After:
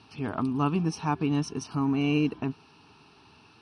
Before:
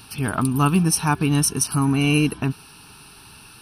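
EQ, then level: cabinet simulation 110–6000 Hz, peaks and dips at 130 Hz -6 dB, 190 Hz -5 dB, 1.5 kHz -6 dB; treble shelf 2 kHz -10 dB; -4.0 dB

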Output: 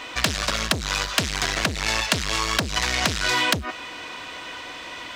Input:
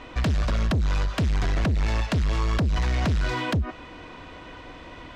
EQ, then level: tilt EQ +4 dB/octave; +6.0 dB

